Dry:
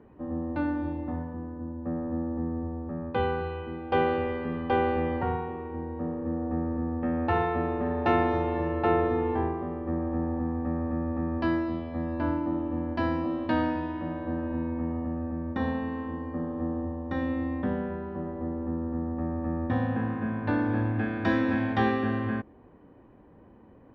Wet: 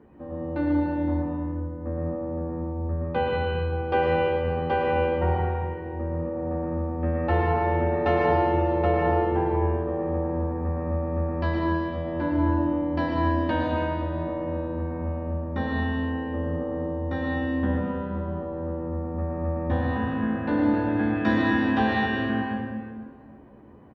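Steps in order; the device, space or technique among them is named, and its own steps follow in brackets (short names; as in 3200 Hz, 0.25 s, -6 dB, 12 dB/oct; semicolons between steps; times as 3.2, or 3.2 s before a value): stairwell (reverb RT60 1.8 s, pre-delay 99 ms, DRR -1 dB); doubler 14 ms -4.5 dB; gain -1 dB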